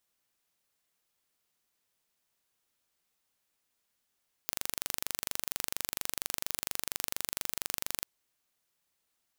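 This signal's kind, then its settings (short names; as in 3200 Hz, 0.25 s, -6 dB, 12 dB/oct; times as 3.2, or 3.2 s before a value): pulse train 24.3/s, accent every 0, -5 dBFS 3.57 s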